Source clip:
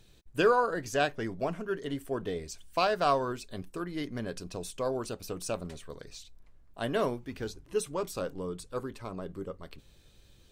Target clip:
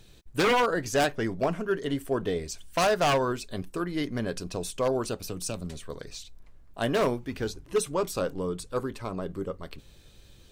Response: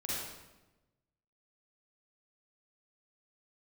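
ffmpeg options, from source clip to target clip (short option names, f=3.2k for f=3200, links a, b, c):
-filter_complex "[0:a]aeval=exprs='0.075*(abs(mod(val(0)/0.075+3,4)-2)-1)':c=same,asettb=1/sr,asplit=3[a][b][c];[a]atrim=end=5.264[d];[b]atrim=start=5.26:end=5.89,asetpts=PTS-STARTPTS,afade=t=in:d=0.004:c=qsin,afade=t=out:st=0.626:d=0.004:c=qsin,acrossover=split=270|3000[e][f][g];[f]acompressor=threshold=-50dB:ratio=2[h];[e][h][g]amix=inputs=3:normalize=0[i];[c]atrim=start=5.886[j];[d][i]acrossfade=d=0.004:c1=hsin:c2=qsin[k];[k][j]acrossfade=d=0.004:c1=qsin:c2=hsin,volume=5.5dB"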